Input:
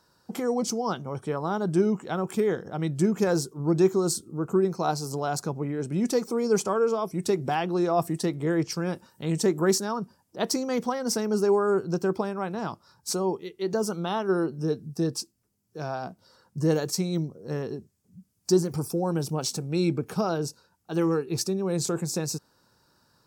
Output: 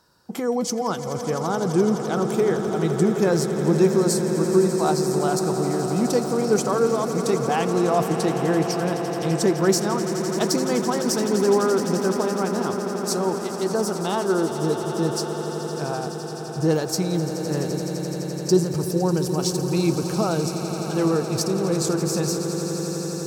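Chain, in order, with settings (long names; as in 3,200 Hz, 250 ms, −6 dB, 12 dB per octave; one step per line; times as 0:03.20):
echo that builds up and dies away 85 ms, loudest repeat 8, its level −13.5 dB
level +3 dB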